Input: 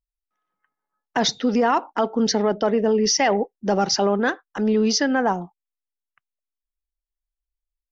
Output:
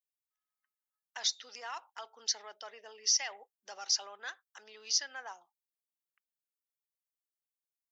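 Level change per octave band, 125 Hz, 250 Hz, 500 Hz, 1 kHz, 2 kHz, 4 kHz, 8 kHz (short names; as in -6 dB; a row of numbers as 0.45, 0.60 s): under -40 dB, under -40 dB, -31.5 dB, -23.0 dB, -16.5 dB, -7.5 dB, n/a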